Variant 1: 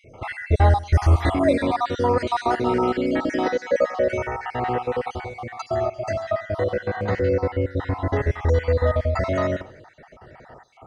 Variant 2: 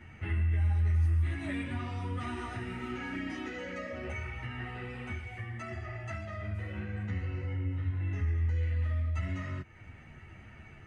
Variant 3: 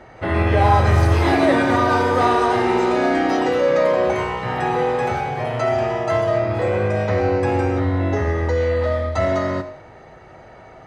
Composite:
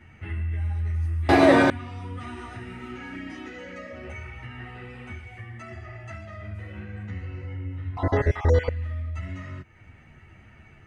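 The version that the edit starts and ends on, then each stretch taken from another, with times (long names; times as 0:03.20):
2
0:01.29–0:01.70: punch in from 3
0:07.97–0:08.69: punch in from 1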